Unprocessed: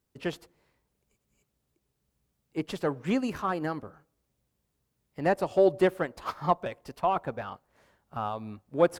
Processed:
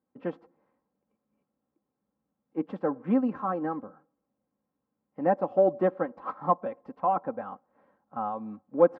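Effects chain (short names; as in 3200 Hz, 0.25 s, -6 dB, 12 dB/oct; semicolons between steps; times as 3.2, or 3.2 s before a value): Chebyshev band-pass 170–1100 Hz, order 2; comb 3.8 ms, depth 61%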